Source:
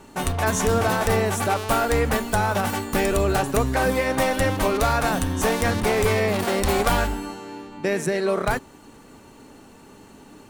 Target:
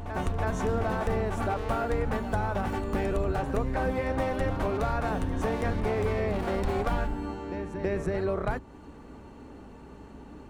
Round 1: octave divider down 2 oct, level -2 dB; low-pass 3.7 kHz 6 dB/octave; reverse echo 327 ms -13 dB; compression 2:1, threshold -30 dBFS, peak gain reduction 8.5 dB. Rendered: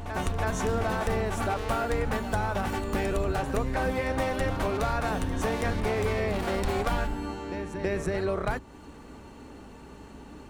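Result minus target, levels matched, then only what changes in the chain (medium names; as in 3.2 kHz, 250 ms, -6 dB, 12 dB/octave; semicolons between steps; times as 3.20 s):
4 kHz band +5.5 dB
change: low-pass 1.3 kHz 6 dB/octave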